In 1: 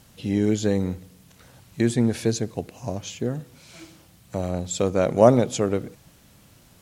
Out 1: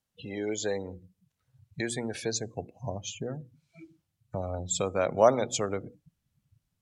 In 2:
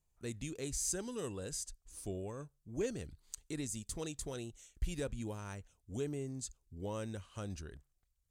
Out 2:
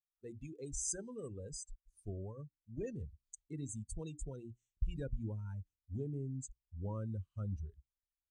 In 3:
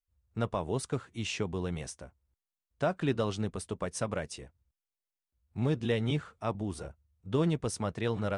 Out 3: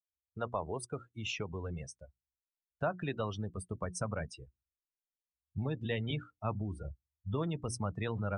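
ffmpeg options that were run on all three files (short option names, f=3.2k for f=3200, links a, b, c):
-filter_complex "[0:a]lowshelf=f=340:g=-5.5,bandreject=f=60:t=h:w=6,bandreject=f=120:t=h:w=6,bandreject=f=180:t=h:w=6,bandreject=f=240:t=h:w=6,bandreject=f=300:t=h:w=6,bandreject=f=360:t=h:w=6,afftdn=nr=29:nf=-39,acrossover=split=380|2100[a][b][c];[a]acompressor=threshold=-43dB:ratio=10[d];[d][b][c]amix=inputs=3:normalize=0,asubboost=boost=5:cutoff=190"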